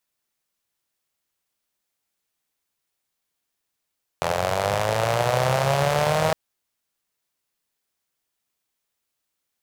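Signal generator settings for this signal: four-cylinder engine model, changing speed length 2.11 s, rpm 2500, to 4800, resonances 130/590 Hz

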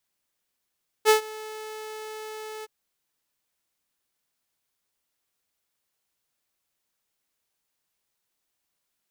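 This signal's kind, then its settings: ADSR saw 433 Hz, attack 44 ms, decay 0.113 s, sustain -22.5 dB, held 1.59 s, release 28 ms -10.5 dBFS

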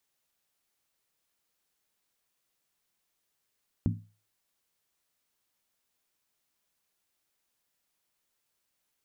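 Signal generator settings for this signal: skin hit, lowest mode 105 Hz, decay 0.36 s, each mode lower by 2.5 dB, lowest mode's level -23 dB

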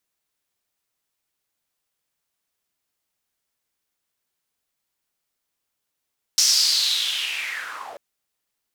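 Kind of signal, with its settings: swept filtered noise white, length 1.59 s bandpass, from 5600 Hz, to 550 Hz, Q 5.2, linear, gain ramp -14 dB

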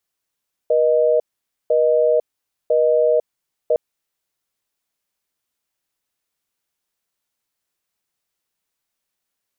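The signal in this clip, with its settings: call progress tone busy tone, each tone -15.5 dBFS 3.06 s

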